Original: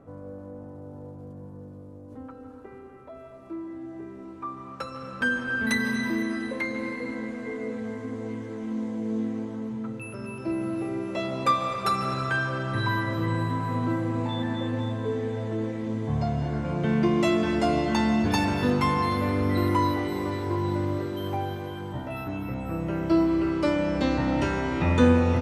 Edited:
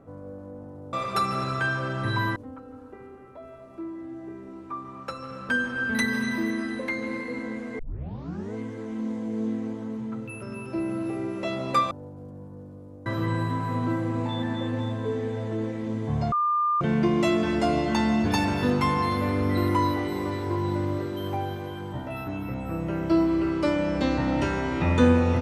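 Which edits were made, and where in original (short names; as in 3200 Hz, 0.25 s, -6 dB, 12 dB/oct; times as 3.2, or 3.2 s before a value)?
0.93–2.08 swap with 11.63–13.06
7.51 tape start 0.75 s
16.32–16.81 bleep 1200 Hz -20.5 dBFS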